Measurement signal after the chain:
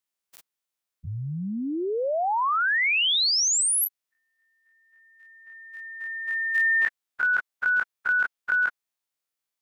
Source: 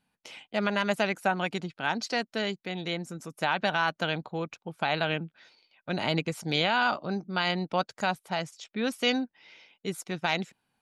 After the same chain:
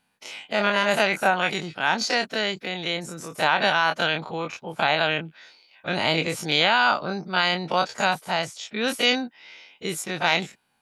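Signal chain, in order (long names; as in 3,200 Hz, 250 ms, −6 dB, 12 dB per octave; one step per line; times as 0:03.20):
every bin's largest magnitude spread in time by 60 ms
low-shelf EQ 370 Hz −7 dB
level +4 dB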